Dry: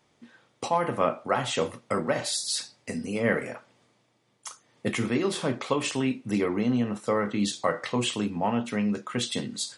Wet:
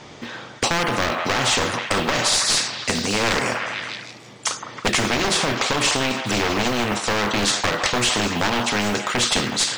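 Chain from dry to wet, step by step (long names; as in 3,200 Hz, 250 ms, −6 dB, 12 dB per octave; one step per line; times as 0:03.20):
wavefolder on the positive side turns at −25 dBFS
low-pass filter 6,900 Hz 24 dB per octave
floating-point word with a short mantissa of 6 bits
echo through a band-pass that steps 157 ms, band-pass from 930 Hz, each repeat 0.7 octaves, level −9 dB
boost into a limiter +19.5 dB
every bin compressed towards the loudest bin 2 to 1
level −3.5 dB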